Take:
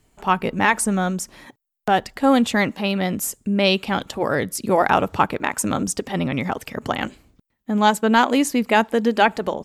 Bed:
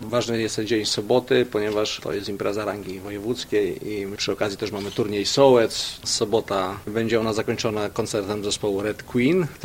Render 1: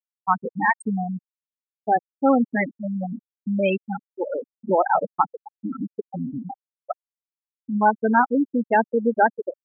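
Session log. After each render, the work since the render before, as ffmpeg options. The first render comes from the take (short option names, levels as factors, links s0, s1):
-af "afftfilt=real='re*gte(hypot(re,im),0.501)':imag='im*gte(hypot(re,im),0.501)':win_size=1024:overlap=0.75,lowshelf=f=120:g=-11.5"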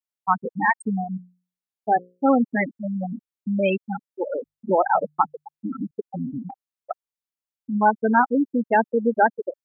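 -filter_complex "[0:a]asplit=3[s0][s1][s2];[s0]afade=t=out:st=1:d=0.02[s3];[s1]bandreject=f=60:t=h:w=6,bandreject=f=120:t=h:w=6,bandreject=f=180:t=h:w=6,bandreject=f=240:t=h:w=6,bandreject=f=300:t=h:w=6,bandreject=f=360:t=h:w=6,bandreject=f=420:t=h:w=6,bandreject=f=480:t=h:w=6,bandreject=f=540:t=h:w=6,afade=t=in:st=1:d=0.02,afade=t=out:st=2.27:d=0.02[s4];[s2]afade=t=in:st=2.27:d=0.02[s5];[s3][s4][s5]amix=inputs=3:normalize=0,asettb=1/sr,asplit=3[s6][s7][s8];[s6]atrim=end=4.404[s9];[s7]atrim=start=4.4:end=5.91,asetpts=PTS-STARTPTS,afade=t=in:d=0.004:c=qsin,afade=t=out:st=1.506:d=0.004:c=qsin,bandreject=f=50:t=h:w=6,bandreject=f=100:t=h:w=6,bandreject=f=150:t=h:w=6[s10];[s8]atrim=start=5.906[s11];[s9][s10]acrossfade=d=0.004:c1=hsin:c2=qsin[s12];[s12][s11]acrossfade=d=0.004:c1=qsin:c2=hsin,asettb=1/sr,asplit=3[s13][s14][s15];[s13]atrim=end=6.504[s16];[s14]atrim=start=6.5:end=6.91,asetpts=PTS-STARTPTS,afade=t=in:d=0.004:c=qsin,afade=t=out:st=0.406:d=0.004:c=qsin,acompressor=threshold=0.02:ratio=6:attack=3.2:release=140:knee=1:detection=peak[s17];[s15]atrim=start=6.906[s18];[s16][s17]acrossfade=d=0.004:c1=hsin:c2=qsin[s19];[s19][s18]acrossfade=d=0.004:c1=qsin:c2=hsin"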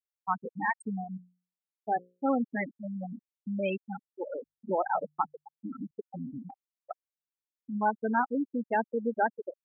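-af "volume=0.335"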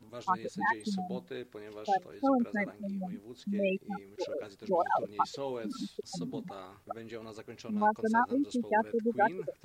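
-filter_complex "[1:a]volume=0.075[s0];[0:a][s0]amix=inputs=2:normalize=0"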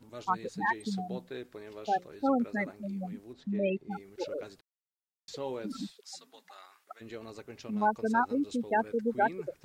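-filter_complex "[0:a]asettb=1/sr,asplit=3[s0][s1][s2];[s0]atrim=end=3.334[s3];[s1]atrim=start=3.33:end=3.91,asetpts=PTS-STARTPTS,afade=t=in:d=0.004:c=qsin,afade=t=out:st=0.576:d=0.004:c=qsin,aemphasis=mode=reproduction:type=75fm[s4];[s2]atrim=start=3.906[s5];[s3][s4]acrossfade=d=0.004:c1=hsin:c2=qsin[s6];[s6][s5]acrossfade=d=0.004:c1=qsin:c2=hsin,asplit=3[s7][s8][s9];[s7]afade=t=out:st=5.9:d=0.02[s10];[s8]highpass=1200,afade=t=in:st=5.9:d=0.02,afade=t=out:st=7:d=0.02[s11];[s9]afade=t=in:st=7:d=0.02[s12];[s10][s11][s12]amix=inputs=3:normalize=0,asplit=3[s13][s14][s15];[s13]atrim=end=4.61,asetpts=PTS-STARTPTS,afade=t=out:st=4.606:d=0.004:c=hsin[s16];[s14]atrim=start=4.61:end=5.28,asetpts=PTS-STARTPTS,volume=0[s17];[s15]atrim=start=5.28,asetpts=PTS-STARTPTS,afade=t=in:d=0.004:c=hsin[s18];[s16][s17][s18]concat=n=3:v=0:a=1"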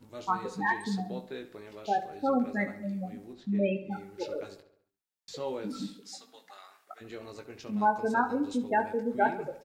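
-filter_complex "[0:a]asplit=2[s0][s1];[s1]adelay=20,volume=0.501[s2];[s0][s2]amix=inputs=2:normalize=0,asplit=2[s3][s4];[s4]adelay=69,lowpass=f=4300:p=1,volume=0.224,asplit=2[s5][s6];[s6]adelay=69,lowpass=f=4300:p=1,volume=0.54,asplit=2[s7][s8];[s8]adelay=69,lowpass=f=4300:p=1,volume=0.54,asplit=2[s9][s10];[s10]adelay=69,lowpass=f=4300:p=1,volume=0.54,asplit=2[s11][s12];[s12]adelay=69,lowpass=f=4300:p=1,volume=0.54,asplit=2[s13][s14];[s14]adelay=69,lowpass=f=4300:p=1,volume=0.54[s15];[s3][s5][s7][s9][s11][s13][s15]amix=inputs=7:normalize=0"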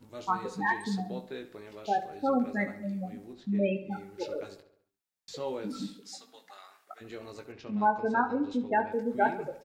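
-filter_complex "[0:a]asettb=1/sr,asplit=3[s0][s1][s2];[s0]atrim=end=7.524[s3];[s1]atrim=start=7.52:end=8.92,asetpts=PTS-STARTPTS,afade=t=in:d=0.004:c=qsin,afade=t=out:st=1.396:d=0.004:c=qsin,lowpass=3900[s4];[s2]atrim=start=8.916[s5];[s3][s4]acrossfade=d=0.004:c1=hsin:c2=qsin[s6];[s6][s5]acrossfade=d=0.004:c1=qsin:c2=hsin"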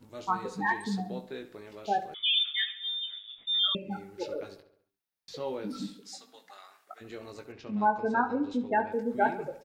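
-filter_complex "[0:a]asettb=1/sr,asplit=3[s0][s1][s2];[s0]atrim=end=2.144[s3];[s1]atrim=start=2.14:end=3.75,asetpts=PTS-STARTPTS,afade=t=in:d=0.004:c=qsin,afade=t=out:st=1.606:d=0.004:c=qsin,lowpass=f=3200:t=q:w=0.5098,lowpass=f=3200:t=q:w=0.6013,lowpass=f=3200:t=q:w=0.9,lowpass=f=3200:t=q:w=2.563,afreqshift=-3800[s4];[s2]atrim=start=3.746[s5];[s3][s4]acrossfade=d=0.004:c1=hsin:c2=qsin[s6];[s6][s5]acrossfade=d=0.004:c1=qsin:c2=hsin,asettb=1/sr,asplit=3[s7][s8][s9];[s7]atrim=end=4.344[s10];[s8]atrim=start=4.34:end=5.78,asetpts=PTS-STARTPTS,afade=t=in:d=0.004:c=qsin,afade=t=out:st=1.436:d=0.004:c=qsin,equalizer=f=7400:w=4.4:g=-10.5[s11];[s9]atrim=start=5.776[s12];[s10][s11]acrossfade=d=0.004:c1=hsin:c2=qsin[s13];[s13][s12]acrossfade=d=0.004:c1=qsin:c2=hsin"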